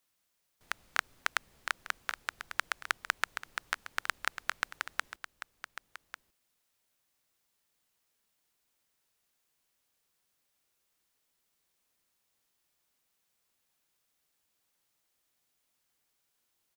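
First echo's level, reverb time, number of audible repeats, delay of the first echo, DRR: −12.0 dB, no reverb audible, 1, 1,146 ms, no reverb audible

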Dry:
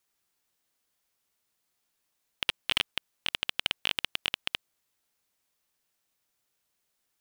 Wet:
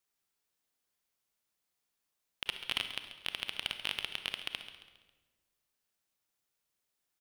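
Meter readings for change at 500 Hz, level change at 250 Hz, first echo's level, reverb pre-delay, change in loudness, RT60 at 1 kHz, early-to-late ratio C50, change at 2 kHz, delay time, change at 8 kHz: −5.5 dB, −5.5 dB, −13.0 dB, 30 ms, −6.0 dB, 1.2 s, 8.0 dB, −6.0 dB, 136 ms, −6.0 dB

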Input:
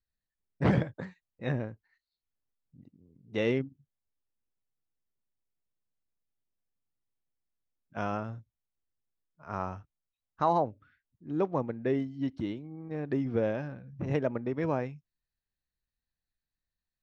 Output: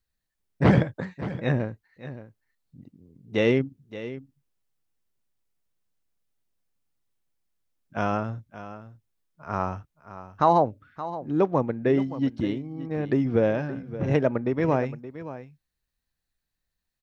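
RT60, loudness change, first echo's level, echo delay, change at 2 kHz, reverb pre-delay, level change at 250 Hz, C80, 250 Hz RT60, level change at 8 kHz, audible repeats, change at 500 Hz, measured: no reverb audible, +6.5 dB, −14.0 dB, 572 ms, +7.0 dB, no reverb audible, +7.0 dB, no reverb audible, no reverb audible, can't be measured, 1, +7.0 dB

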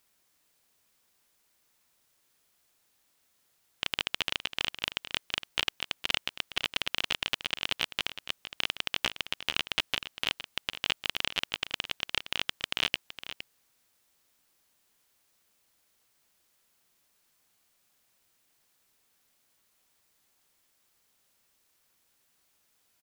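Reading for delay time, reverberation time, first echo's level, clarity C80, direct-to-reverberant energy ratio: 463 ms, no reverb audible, −12.0 dB, no reverb audible, no reverb audible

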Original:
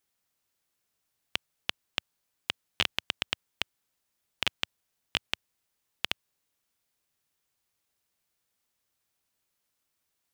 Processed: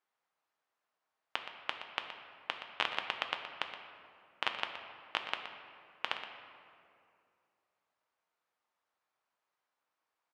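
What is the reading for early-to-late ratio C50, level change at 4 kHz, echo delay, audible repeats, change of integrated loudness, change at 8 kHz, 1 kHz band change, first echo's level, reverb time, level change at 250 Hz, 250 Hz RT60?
5.5 dB, −7.0 dB, 121 ms, 1, −5.0 dB, −15.0 dB, +4.5 dB, −11.5 dB, 2.5 s, −7.0 dB, 2.7 s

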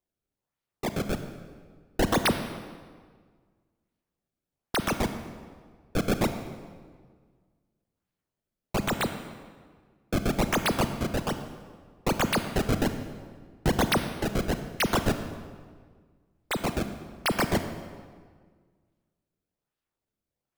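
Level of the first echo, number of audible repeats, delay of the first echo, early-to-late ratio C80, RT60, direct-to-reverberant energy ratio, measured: no echo audible, no echo audible, no echo audible, 10.0 dB, 1.7 s, 8.0 dB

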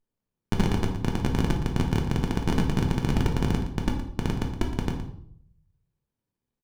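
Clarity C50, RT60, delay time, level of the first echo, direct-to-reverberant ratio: 6.0 dB, 0.65 s, 117 ms, −12.0 dB, 1.0 dB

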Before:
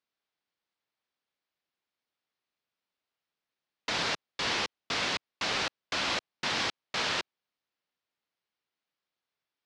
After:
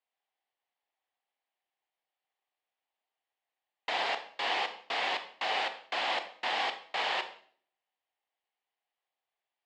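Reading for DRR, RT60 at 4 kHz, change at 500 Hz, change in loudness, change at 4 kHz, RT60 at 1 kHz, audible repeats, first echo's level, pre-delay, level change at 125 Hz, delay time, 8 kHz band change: 8.0 dB, 0.45 s, +0.5 dB, −1.5 dB, −3.0 dB, 0.50 s, no echo audible, no echo audible, 25 ms, below −20 dB, no echo audible, −13.0 dB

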